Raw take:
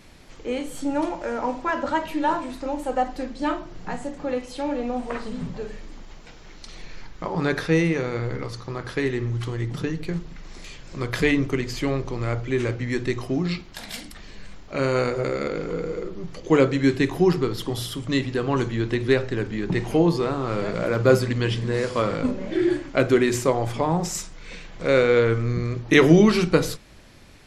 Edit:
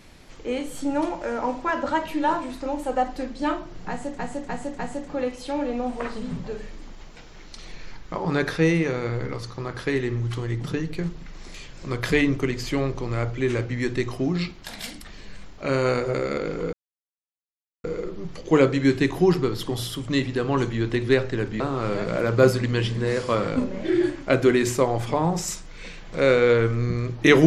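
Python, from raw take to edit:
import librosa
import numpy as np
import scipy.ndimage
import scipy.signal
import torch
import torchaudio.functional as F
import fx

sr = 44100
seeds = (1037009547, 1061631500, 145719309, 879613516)

y = fx.edit(x, sr, fx.repeat(start_s=3.89, length_s=0.3, count=4),
    fx.insert_silence(at_s=15.83, length_s=1.11),
    fx.cut(start_s=19.59, length_s=0.68), tone=tone)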